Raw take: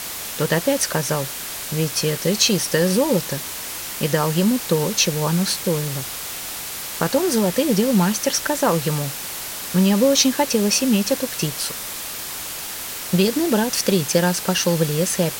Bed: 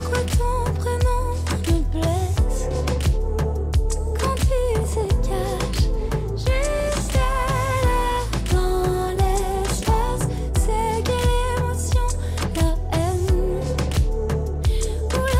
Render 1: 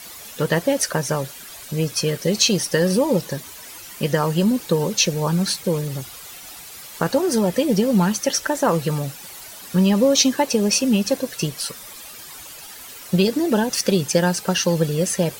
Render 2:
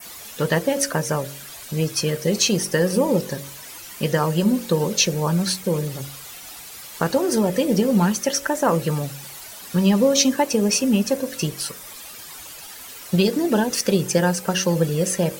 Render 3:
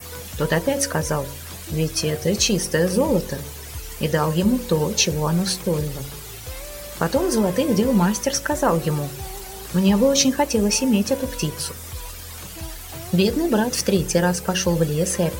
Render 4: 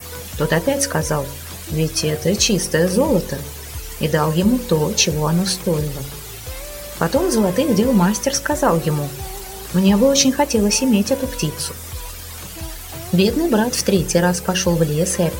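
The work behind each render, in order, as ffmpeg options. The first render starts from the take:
-af "afftdn=nr=12:nf=-31"
-af "bandreject=f=46.46:t=h:w=4,bandreject=f=92.92:t=h:w=4,bandreject=f=139.38:t=h:w=4,bandreject=f=185.84:t=h:w=4,bandreject=f=232.3:t=h:w=4,bandreject=f=278.76:t=h:w=4,bandreject=f=325.22:t=h:w=4,bandreject=f=371.68:t=h:w=4,bandreject=f=418.14:t=h:w=4,bandreject=f=464.6:t=h:w=4,bandreject=f=511.06:t=h:w=4,bandreject=f=557.52:t=h:w=4,bandreject=f=603.98:t=h:w=4,adynamicequalizer=threshold=0.01:dfrequency=4000:dqfactor=1.7:tfrequency=4000:tqfactor=1.7:attack=5:release=100:ratio=0.375:range=3.5:mode=cutabove:tftype=bell"
-filter_complex "[1:a]volume=-15.5dB[a];[0:a][a]amix=inputs=2:normalize=0"
-af "volume=3dB"

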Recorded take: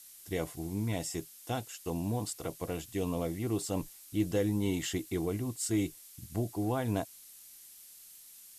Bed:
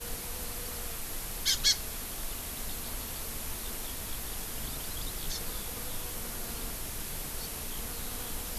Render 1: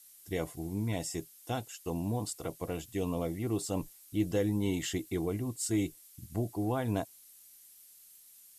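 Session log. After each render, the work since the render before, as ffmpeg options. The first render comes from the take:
-af "afftdn=nr=6:nf=-54"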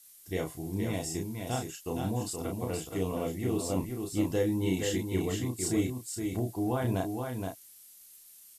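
-filter_complex "[0:a]asplit=2[a][b];[b]adelay=32,volume=-4dB[c];[a][c]amix=inputs=2:normalize=0,aecho=1:1:471:0.562"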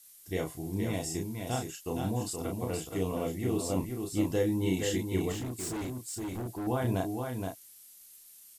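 -filter_complex "[0:a]asettb=1/sr,asplit=3[a][b][c];[a]atrim=end=5.324[d];[b]atrim=start=5.32:end=6.67,asetpts=PTS-STARTPTS,afade=t=in:d=0.004:c=qsin,afade=t=out:st=1.346:d=0.004:c=qsin,asoftclip=type=hard:threshold=-33.5dB[e];[c]atrim=start=6.666[f];[d][e]acrossfade=d=0.004:c1=hsin:c2=qsin[g];[g][f]acrossfade=d=0.004:c1=qsin:c2=hsin"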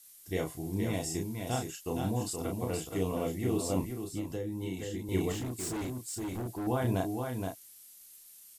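-filter_complex "[0:a]asettb=1/sr,asplit=3[a][b][c];[a]atrim=end=3.864[d];[b]atrim=start=3.86:end=5.09,asetpts=PTS-STARTPTS,afade=t=in:d=0.004:c=qsin,afade=t=out:st=1.226:d=0.004:c=qsin,acrossover=split=89|450[e][f][g];[e]acompressor=threshold=-48dB:ratio=4[h];[f]acompressor=threshold=-37dB:ratio=4[i];[g]acompressor=threshold=-45dB:ratio=4[j];[h][i][j]amix=inputs=3:normalize=0[k];[c]atrim=start=5.086[l];[d][k]acrossfade=d=0.004:c1=hsin:c2=qsin[m];[m][l]acrossfade=d=0.004:c1=qsin:c2=hsin"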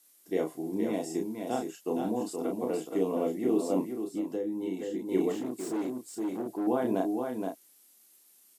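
-af "highpass=f=240:w=0.5412,highpass=f=240:w=1.3066,tiltshelf=f=1.1k:g=7"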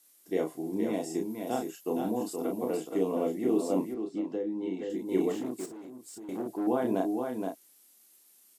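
-filter_complex "[0:a]asettb=1/sr,asplit=3[a][b][c];[a]atrim=end=1.294[d];[b]atrim=start=1.29:end=2.77,asetpts=PTS-STARTPTS,afade=t=in:d=0.004:c=qsin,afade=t=out:st=1.476:d=0.004:c=qsin,equalizer=f=12k:t=o:w=0.27:g=7.5[e];[c]atrim=start=2.766[f];[d][e]acrossfade=d=0.004:c1=hsin:c2=qsin[g];[g][f]acrossfade=d=0.004:c1=qsin:c2=hsin,asettb=1/sr,asplit=3[h][i][j];[h]atrim=end=3.944[k];[i]atrim=start=3.94:end=4.9,asetpts=PTS-STARTPTS,afade=t=in:d=0.004:c=qsin,afade=t=out:st=0.956:d=0.004:c=qsin,highpass=100,lowpass=4.3k[l];[j]atrim=start=4.896[m];[k][l]acrossfade=d=0.004:c1=hsin:c2=qsin[n];[n][m]acrossfade=d=0.004:c1=qsin:c2=hsin,asettb=1/sr,asplit=3[o][p][q];[o]atrim=end=5.654[r];[p]atrim=start=5.65:end=6.29,asetpts=PTS-STARTPTS,afade=t=in:d=0.004:c=qsin,afade=t=out:st=0.636:d=0.004:c=qsin,acompressor=threshold=-43dB:ratio=5:attack=3.2:release=140:knee=1:detection=peak[s];[q]atrim=start=6.286[t];[r][s]acrossfade=d=0.004:c1=hsin:c2=qsin[u];[u][t]acrossfade=d=0.004:c1=qsin:c2=hsin"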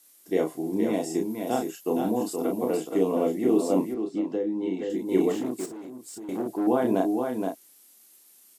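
-af "volume=5dB"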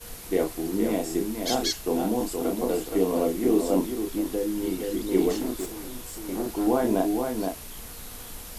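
-filter_complex "[1:a]volume=-3dB[a];[0:a][a]amix=inputs=2:normalize=0"

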